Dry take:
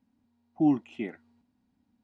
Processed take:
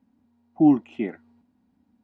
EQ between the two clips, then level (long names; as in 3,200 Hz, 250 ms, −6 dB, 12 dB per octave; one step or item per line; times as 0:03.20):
high-pass filter 57 Hz
parametric band 120 Hz −6.5 dB 0.38 octaves
high-shelf EQ 2,300 Hz −9.5 dB
+7.0 dB